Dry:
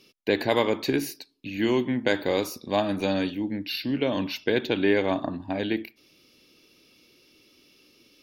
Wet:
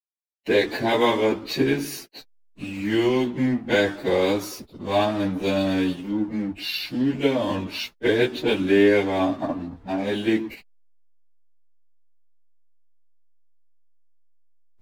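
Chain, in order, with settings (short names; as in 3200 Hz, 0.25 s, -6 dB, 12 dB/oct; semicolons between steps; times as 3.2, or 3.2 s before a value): backlash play -35.5 dBFS; plain phase-vocoder stretch 1.8×; gain +6 dB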